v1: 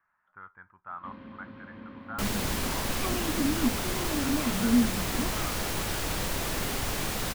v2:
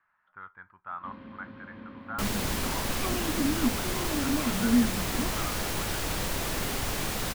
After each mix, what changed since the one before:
speech: remove high-frequency loss of the air 350 metres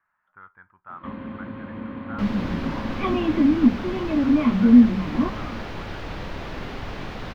first sound +11.5 dB
master: add high-frequency loss of the air 270 metres

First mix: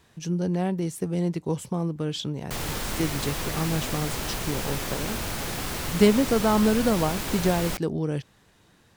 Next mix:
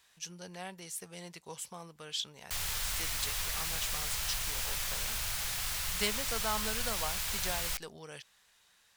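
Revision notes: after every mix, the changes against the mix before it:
speech: add low shelf with overshoot 180 Hz −11 dB, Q 1.5
master: add guitar amp tone stack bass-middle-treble 10-0-10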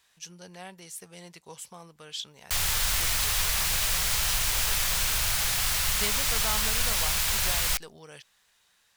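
background +9.0 dB

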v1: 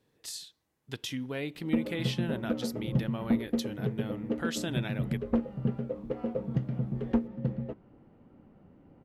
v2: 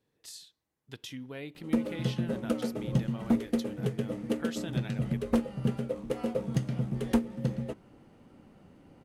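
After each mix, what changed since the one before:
speech −6.0 dB
background: remove head-to-tape spacing loss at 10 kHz 37 dB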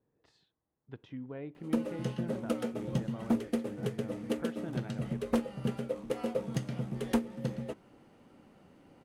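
speech: add low-pass filter 1,200 Hz 12 dB per octave
background: add low-shelf EQ 200 Hz −8 dB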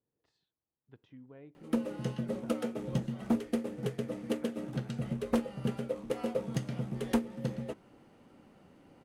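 speech −10.0 dB

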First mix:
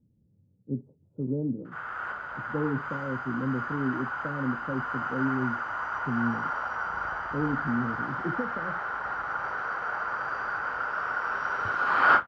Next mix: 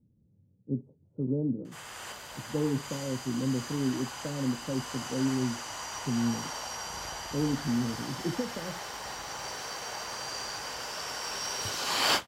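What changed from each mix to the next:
background: remove low-pass with resonance 1,400 Hz, resonance Q 7.9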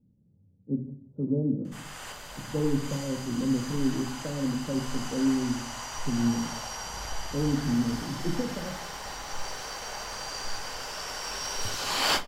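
background: remove high-pass filter 87 Hz 12 dB per octave
reverb: on, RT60 0.55 s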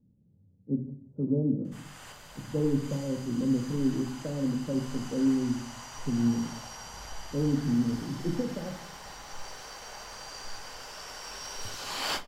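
background −6.5 dB

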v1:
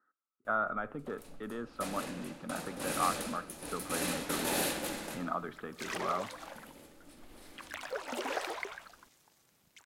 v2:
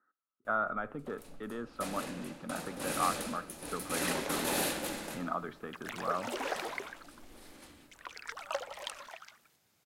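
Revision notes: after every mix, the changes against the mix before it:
second sound: entry −1.85 s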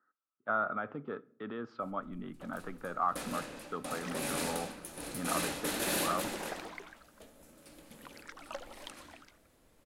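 first sound: entry +1.35 s
second sound −7.0 dB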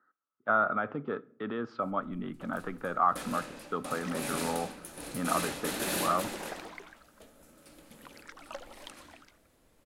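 speech +5.5 dB

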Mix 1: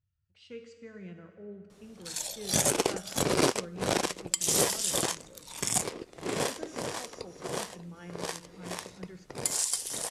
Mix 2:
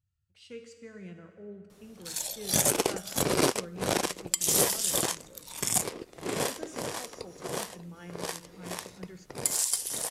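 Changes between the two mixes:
speech: remove high-frequency loss of the air 81 metres
master: remove low-pass filter 9,900 Hz 12 dB per octave

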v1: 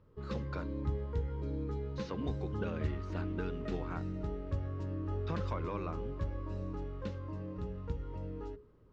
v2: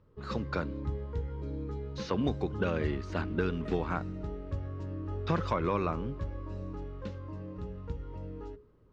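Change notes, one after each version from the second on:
speech +9.5 dB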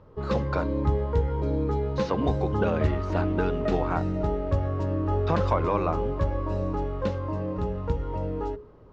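background +10.0 dB
master: add parametric band 740 Hz +9.5 dB 1.1 octaves

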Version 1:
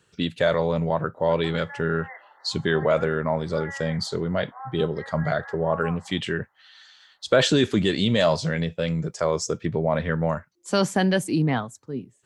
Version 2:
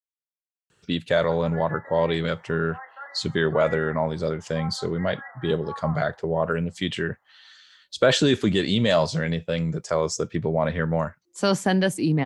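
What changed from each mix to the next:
speech: entry +0.70 s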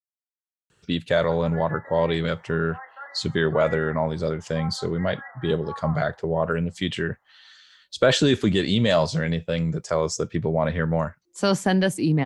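master: add low-shelf EQ 79 Hz +6.5 dB

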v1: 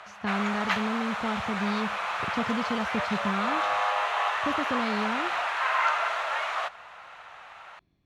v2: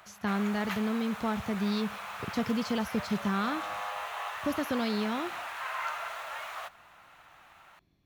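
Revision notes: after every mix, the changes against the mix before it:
background −10.5 dB
master: remove high-frequency loss of the air 85 metres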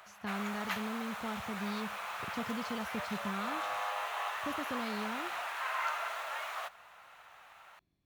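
speech −9.0 dB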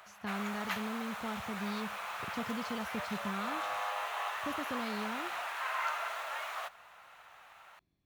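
nothing changed

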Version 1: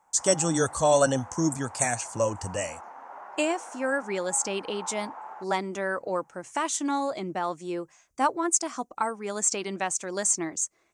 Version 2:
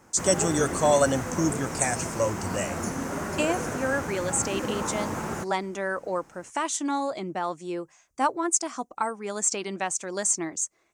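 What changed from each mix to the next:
background: remove four-pole ladder band-pass 930 Hz, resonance 65%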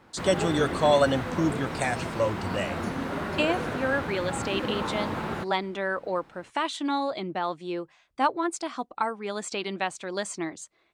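master: add high shelf with overshoot 5,000 Hz −9 dB, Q 3

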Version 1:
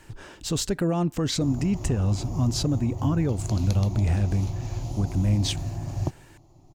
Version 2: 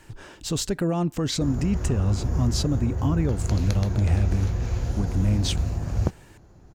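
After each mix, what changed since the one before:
background: remove phaser with its sweep stopped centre 310 Hz, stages 8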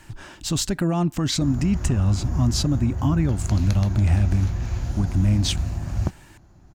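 speech +3.5 dB
master: add parametric band 460 Hz −13 dB 0.35 octaves

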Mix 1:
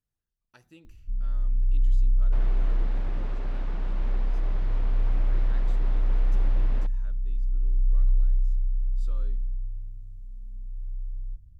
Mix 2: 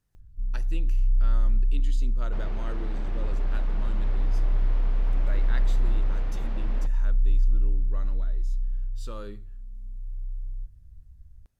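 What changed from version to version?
speech +11.5 dB
first sound: entry −0.70 s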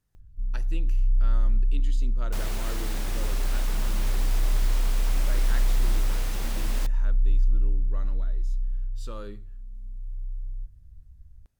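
second sound: remove head-to-tape spacing loss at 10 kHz 42 dB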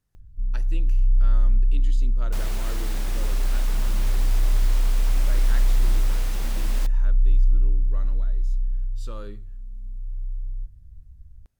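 first sound +3.5 dB

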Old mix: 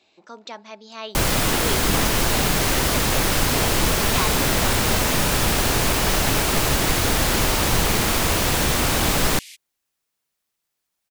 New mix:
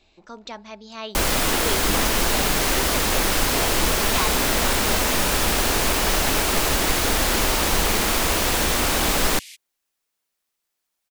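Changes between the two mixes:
speech: remove high-pass filter 300 Hz 12 dB per octave
master: add parametric band 120 Hz −10.5 dB 0.97 octaves

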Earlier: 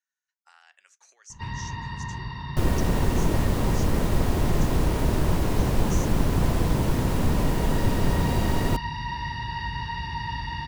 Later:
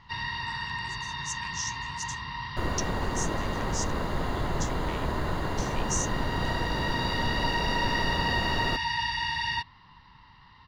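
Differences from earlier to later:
first sound: entry −1.30 s
second sound: add moving average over 16 samples
master: add tilt shelving filter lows −9 dB, about 800 Hz

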